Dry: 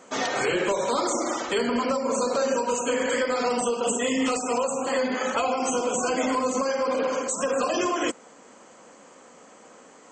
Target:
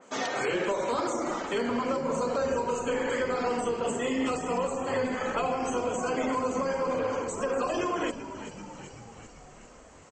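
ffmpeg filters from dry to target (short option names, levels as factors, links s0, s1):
-filter_complex "[0:a]asplit=8[s0][s1][s2][s3][s4][s5][s6][s7];[s1]adelay=387,afreqshift=-79,volume=0.251[s8];[s2]adelay=774,afreqshift=-158,volume=0.153[s9];[s3]adelay=1161,afreqshift=-237,volume=0.0933[s10];[s4]adelay=1548,afreqshift=-316,volume=0.0569[s11];[s5]adelay=1935,afreqshift=-395,volume=0.0347[s12];[s6]adelay=2322,afreqshift=-474,volume=0.0211[s13];[s7]adelay=2709,afreqshift=-553,volume=0.0129[s14];[s0][s8][s9][s10][s11][s12][s13][s14]amix=inputs=8:normalize=0,adynamicequalizer=threshold=0.00562:dfrequency=3300:dqfactor=0.7:tfrequency=3300:tqfactor=0.7:attack=5:release=100:ratio=0.375:range=4:mode=cutabove:tftype=highshelf,volume=0.631"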